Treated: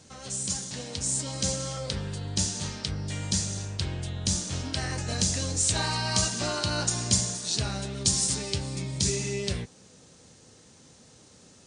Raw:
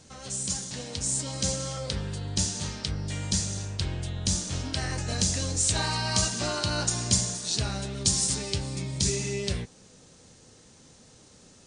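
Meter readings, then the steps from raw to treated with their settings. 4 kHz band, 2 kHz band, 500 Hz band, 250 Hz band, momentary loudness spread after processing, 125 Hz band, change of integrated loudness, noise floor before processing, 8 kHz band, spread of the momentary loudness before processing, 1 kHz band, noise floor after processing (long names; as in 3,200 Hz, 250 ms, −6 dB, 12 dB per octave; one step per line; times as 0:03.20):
0.0 dB, 0.0 dB, 0.0 dB, 0.0 dB, 8 LU, −0.5 dB, 0.0 dB, −55 dBFS, 0.0 dB, 8 LU, 0.0 dB, −55 dBFS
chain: high-pass filter 58 Hz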